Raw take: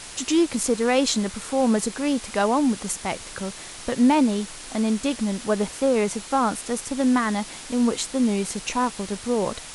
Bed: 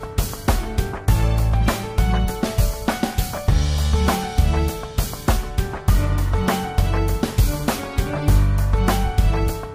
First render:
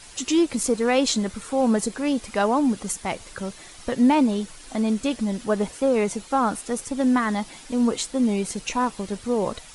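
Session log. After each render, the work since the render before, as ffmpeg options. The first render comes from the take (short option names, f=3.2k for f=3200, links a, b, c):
-af "afftdn=nr=9:nf=-39"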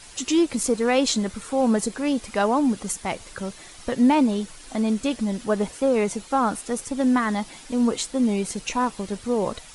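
-af anull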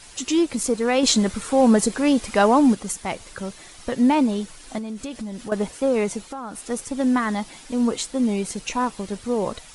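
-filter_complex "[0:a]asettb=1/sr,asplit=3[a][b][c];[a]atrim=end=1.034[d];[b]atrim=start=1.03:end=2.75,asetpts=PTS-STARTPTS,afade=t=in:d=0.004:c=qsin,afade=t=out:st=1.716:d=0.004:c=qsin,acontrast=29[e];[c]atrim=start=2.746[f];[d][e]acrossfade=d=0.004:c1=hsin:c2=qsin[g];[g][f]acrossfade=d=0.004:c1=qsin:c2=hsin,asettb=1/sr,asplit=3[h][i][j];[h]atrim=end=4.784[k];[i]atrim=start=4.78:end=5.52,asetpts=PTS-STARTPTS,afade=t=in:d=0.004:c=qsin,afade=t=out:st=0.736:d=0.004:c=qsin,acompressor=threshold=-28dB:ratio=6:attack=3.2:release=140:knee=1:detection=peak[l];[j]atrim=start=5.516[m];[k][l]acrossfade=d=0.004:c1=hsin:c2=qsin[n];[n][m]acrossfade=d=0.004:c1=qsin:c2=hsin,asettb=1/sr,asplit=3[o][p][q];[o]atrim=end=6.194[r];[p]atrim=start=6.19:end=6.7,asetpts=PTS-STARTPTS,afade=t=in:d=0.004:c=qsin,afade=t=out:st=0.506:d=0.004:c=qsin,acompressor=threshold=-30dB:ratio=5:attack=3.2:release=140:knee=1:detection=peak[s];[q]atrim=start=6.696[t];[r][s]acrossfade=d=0.004:c1=hsin:c2=qsin[u];[u][t]acrossfade=d=0.004:c1=qsin:c2=hsin"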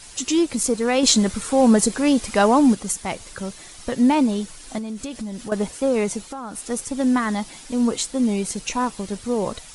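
-af "bass=f=250:g=2,treble=f=4k:g=4"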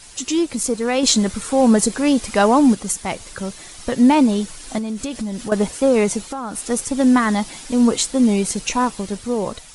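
-af "dynaudnorm=f=490:g=5:m=6dB"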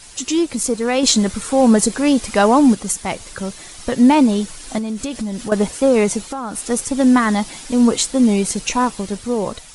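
-af "volume=1.5dB,alimiter=limit=-2dB:level=0:latency=1"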